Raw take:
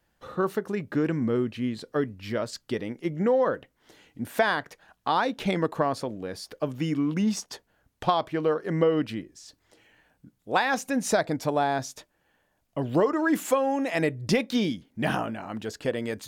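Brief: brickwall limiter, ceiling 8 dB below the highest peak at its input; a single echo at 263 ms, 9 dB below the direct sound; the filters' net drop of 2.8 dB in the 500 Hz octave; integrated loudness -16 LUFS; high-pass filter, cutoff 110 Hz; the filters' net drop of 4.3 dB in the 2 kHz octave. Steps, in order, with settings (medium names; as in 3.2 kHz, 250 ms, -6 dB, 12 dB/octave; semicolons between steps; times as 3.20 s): high-pass 110 Hz; peaking EQ 500 Hz -3 dB; peaking EQ 2 kHz -5.5 dB; peak limiter -17.5 dBFS; delay 263 ms -9 dB; trim +14 dB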